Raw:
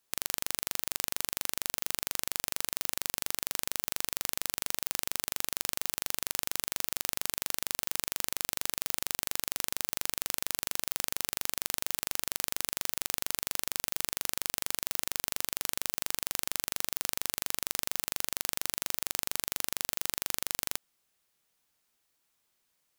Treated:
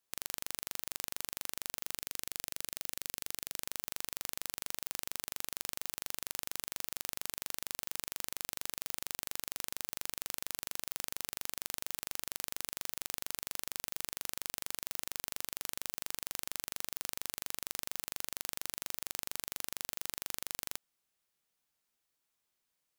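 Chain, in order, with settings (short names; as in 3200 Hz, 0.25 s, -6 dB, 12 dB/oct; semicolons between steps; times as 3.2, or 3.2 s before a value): 1.97–3.62 bell 950 Hz -6 dB 1 oct; gain -7 dB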